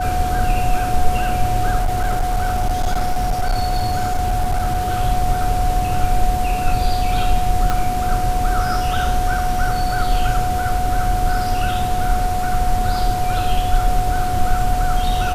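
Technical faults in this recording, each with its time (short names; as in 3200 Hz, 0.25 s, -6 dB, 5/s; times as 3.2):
tone 730 Hz -20 dBFS
1.77–4.94 clipped -13.5 dBFS
7.7 pop -6 dBFS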